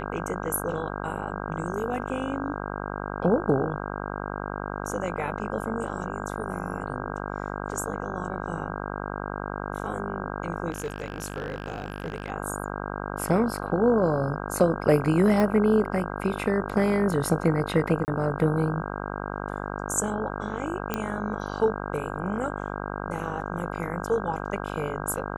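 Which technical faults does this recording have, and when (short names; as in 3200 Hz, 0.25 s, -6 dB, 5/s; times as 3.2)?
buzz 50 Hz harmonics 32 -33 dBFS
10.7–12.3 clipped -25.5 dBFS
15.4 pop -13 dBFS
18.05–18.08 gap 29 ms
20.94 pop -11 dBFS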